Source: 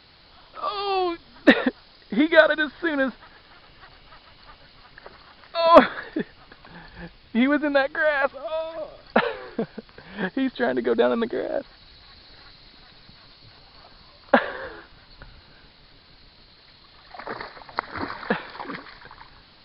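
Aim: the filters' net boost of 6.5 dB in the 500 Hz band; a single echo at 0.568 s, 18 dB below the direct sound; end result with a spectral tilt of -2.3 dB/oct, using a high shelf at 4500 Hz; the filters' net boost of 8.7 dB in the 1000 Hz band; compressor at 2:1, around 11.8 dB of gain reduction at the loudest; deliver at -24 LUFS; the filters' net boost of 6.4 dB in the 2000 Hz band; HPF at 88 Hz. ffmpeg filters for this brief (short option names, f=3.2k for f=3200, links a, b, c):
-af "highpass=88,equalizer=f=500:t=o:g=5,equalizer=f=1k:t=o:g=8,equalizer=f=2k:t=o:g=5.5,highshelf=f=4.5k:g=-5.5,acompressor=threshold=-22dB:ratio=2,aecho=1:1:568:0.126,volume=0.5dB"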